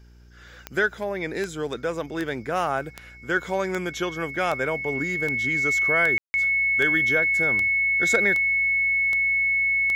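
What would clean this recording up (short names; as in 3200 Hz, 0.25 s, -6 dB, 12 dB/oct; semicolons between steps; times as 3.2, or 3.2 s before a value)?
de-click; de-hum 59.7 Hz, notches 7; notch 2200 Hz, Q 30; room tone fill 6.18–6.34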